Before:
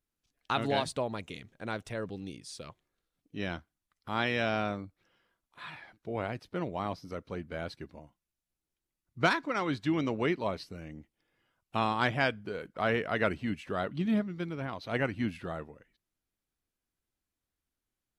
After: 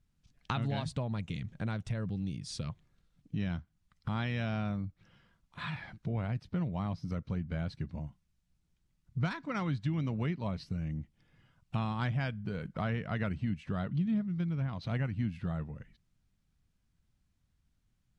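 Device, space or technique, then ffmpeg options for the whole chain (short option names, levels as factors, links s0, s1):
jukebox: -af "lowpass=7800,lowshelf=f=240:t=q:w=1.5:g=12,acompressor=threshold=0.01:ratio=3,volume=1.78"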